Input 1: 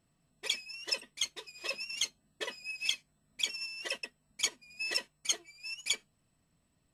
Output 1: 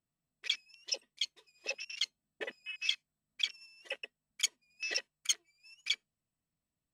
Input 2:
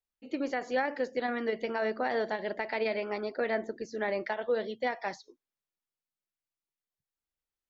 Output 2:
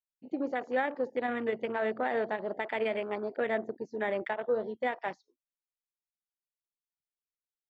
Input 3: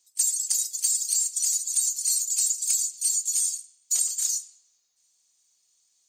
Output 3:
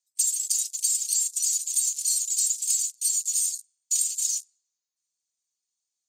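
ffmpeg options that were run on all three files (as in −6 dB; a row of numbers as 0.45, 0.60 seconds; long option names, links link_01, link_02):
-af "afwtdn=0.0126"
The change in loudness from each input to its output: −1.5, 0.0, −0.5 LU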